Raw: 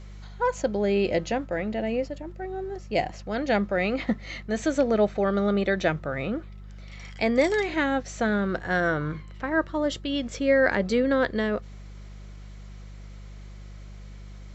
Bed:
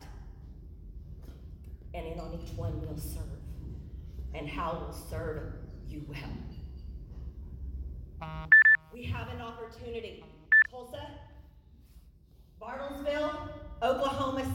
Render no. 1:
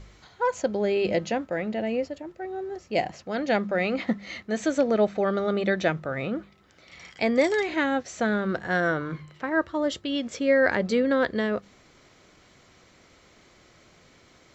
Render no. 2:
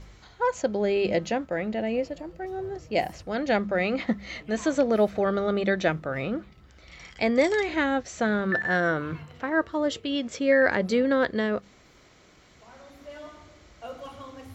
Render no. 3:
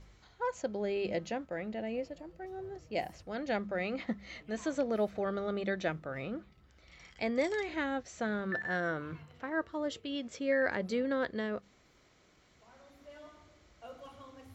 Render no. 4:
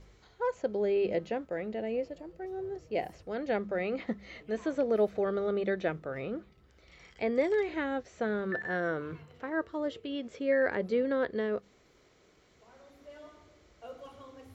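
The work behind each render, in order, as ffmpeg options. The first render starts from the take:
-af "bandreject=f=50:t=h:w=4,bandreject=f=100:t=h:w=4,bandreject=f=150:t=h:w=4,bandreject=f=200:t=h:w=4"
-filter_complex "[1:a]volume=0.282[s0];[0:a][s0]amix=inputs=2:normalize=0"
-af "volume=0.335"
-filter_complex "[0:a]acrossover=split=3600[s0][s1];[s1]acompressor=threshold=0.001:ratio=4:attack=1:release=60[s2];[s0][s2]amix=inputs=2:normalize=0,equalizer=f=430:t=o:w=0.59:g=7.5"

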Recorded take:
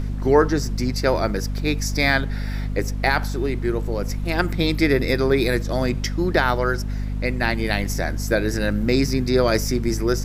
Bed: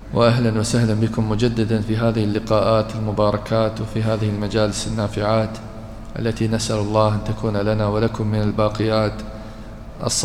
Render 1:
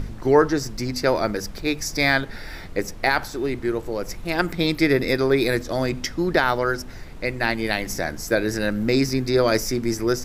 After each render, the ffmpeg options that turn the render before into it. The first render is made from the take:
-af "bandreject=f=50:t=h:w=4,bandreject=f=100:t=h:w=4,bandreject=f=150:t=h:w=4,bandreject=f=200:t=h:w=4,bandreject=f=250:t=h:w=4"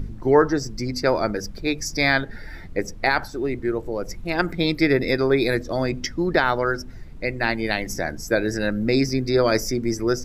-af "afftdn=nr=11:nf=-36"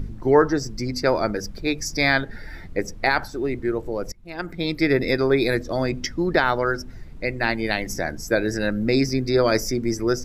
-filter_complex "[0:a]asplit=2[s0][s1];[s0]atrim=end=4.12,asetpts=PTS-STARTPTS,afade=t=out:st=4.116:d=0.004:c=hsin:silence=0.0749894[s2];[s1]atrim=start=4.12,asetpts=PTS-STARTPTS,afade=t=in:d=0.86:silence=0.0749894[s3];[s2][s3]concat=n=2:v=0:a=1"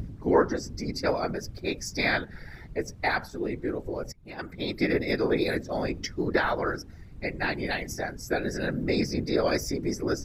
-af "afftfilt=real='hypot(re,im)*cos(2*PI*random(0))':imag='hypot(re,im)*sin(2*PI*random(1))':win_size=512:overlap=0.75"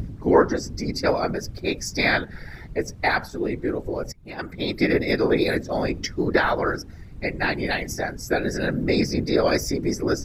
-af "volume=1.78"

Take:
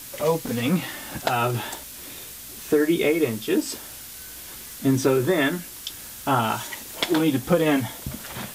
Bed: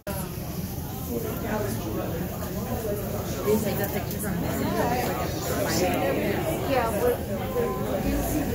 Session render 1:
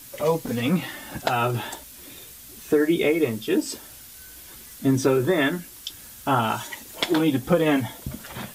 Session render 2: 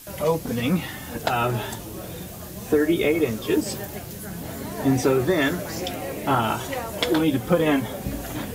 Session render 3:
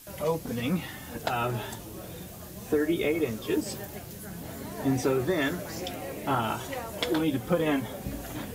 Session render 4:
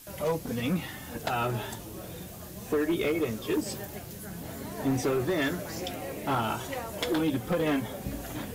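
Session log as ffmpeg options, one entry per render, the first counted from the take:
-af "afftdn=nr=6:nf=-40"
-filter_complex "[1:a]volume=0.473[s0];[0:a][s0]amix=inputs=2:normalize=0"
-af "volume=0.501"
-af "asoftclip=type=hard:threshold=0.0794"

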